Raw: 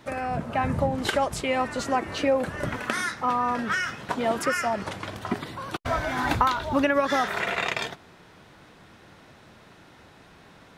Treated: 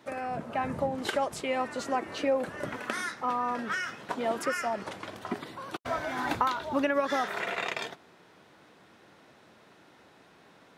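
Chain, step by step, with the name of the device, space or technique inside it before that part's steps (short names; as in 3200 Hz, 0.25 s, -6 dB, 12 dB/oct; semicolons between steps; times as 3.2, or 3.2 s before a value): filter by subtraction (in parallel: LPF 350 Hz 12 dB/oct + phase invert); on the sum: gain -6 dB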